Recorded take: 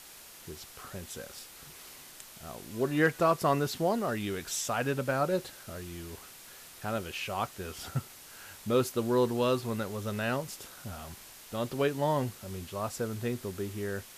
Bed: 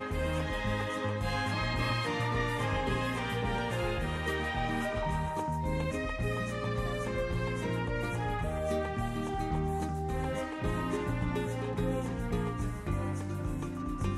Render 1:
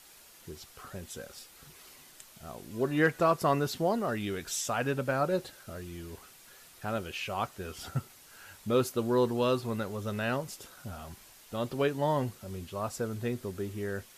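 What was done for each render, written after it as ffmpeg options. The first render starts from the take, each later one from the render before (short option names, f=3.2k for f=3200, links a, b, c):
-af "afftdn=nr=6:nf=-51"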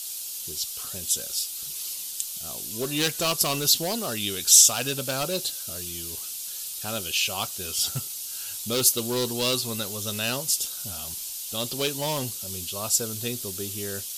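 -af "asoftclip=type=hard:threshold=-23.5dB,aexciter=amount=8.3:drive=5.2:freq=2.8k"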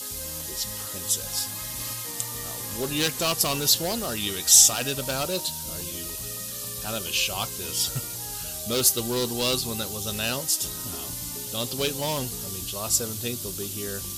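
-filter_complex "[1:a]volume=-9.5dB[a];[0:a][a]amix=inputs=2:normalize=0"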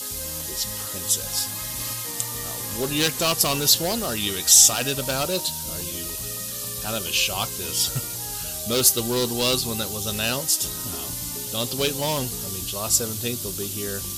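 -af "volume=3dB,alimiter=limit=-2dB:level=0:latency=1"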